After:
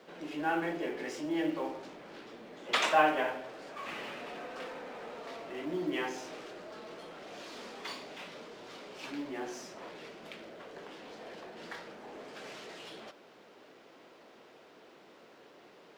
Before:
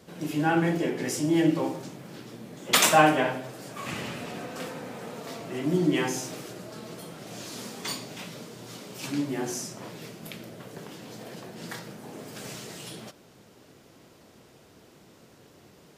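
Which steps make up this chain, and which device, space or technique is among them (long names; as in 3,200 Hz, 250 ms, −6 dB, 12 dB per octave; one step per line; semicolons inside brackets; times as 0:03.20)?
phone line with mismatched companding (band-pass filter 380–3,400 Hz; mu-law and A-law mismatch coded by mu)
level −6 dB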